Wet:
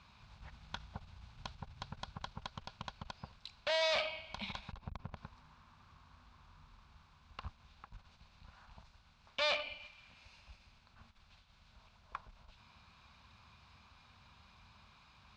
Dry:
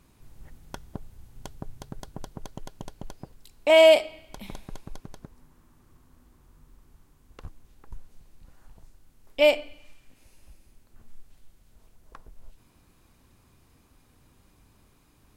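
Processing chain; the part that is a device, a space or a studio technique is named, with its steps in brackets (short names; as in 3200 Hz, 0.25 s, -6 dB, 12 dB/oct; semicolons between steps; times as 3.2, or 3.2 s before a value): 4.72–5.17 tilt shelf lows +8.5 dB, about 1100 Hz; scooped metal amplifier (tube stage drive 33 dB, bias 0.4; speaker cabinet 93–3900 Hz, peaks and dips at 120 Hz -5 dB, 220 Hz +7 dB, 460 Hz -6 dB, 1000 Hz +3 dB, 1900 Hz -9 dB, 3100 Hz -6 dB; passive tone stack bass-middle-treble 10-0-10); gain +14.5 dB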